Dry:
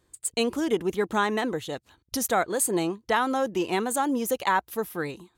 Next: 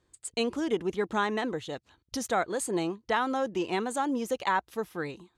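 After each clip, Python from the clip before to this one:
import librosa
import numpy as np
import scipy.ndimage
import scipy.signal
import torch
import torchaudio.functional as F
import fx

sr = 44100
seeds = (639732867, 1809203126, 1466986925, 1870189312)

y = scipy.signal.sosfilt(scipy.signal.butter(2, 7000.0, 'lowpass', fs=sr, output='sos'), x)
y = y * 10.0 ** (-3.5 / 20.0)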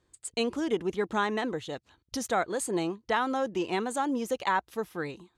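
y = x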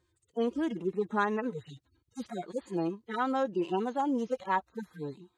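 y = fx.hpss_only(x, sr, part='harmonic')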